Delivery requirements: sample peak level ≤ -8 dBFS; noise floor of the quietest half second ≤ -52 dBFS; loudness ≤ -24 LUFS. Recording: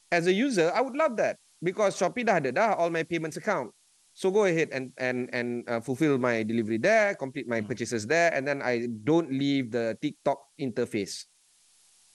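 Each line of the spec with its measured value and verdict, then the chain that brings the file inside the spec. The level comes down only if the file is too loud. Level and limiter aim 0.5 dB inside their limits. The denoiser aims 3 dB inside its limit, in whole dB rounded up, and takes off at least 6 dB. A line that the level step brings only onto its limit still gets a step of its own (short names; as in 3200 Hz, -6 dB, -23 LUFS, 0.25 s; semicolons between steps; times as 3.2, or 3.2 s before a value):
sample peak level -11.0 dBFS: OK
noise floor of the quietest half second -64 dBFS: OK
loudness -27.5 LUFS: OK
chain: none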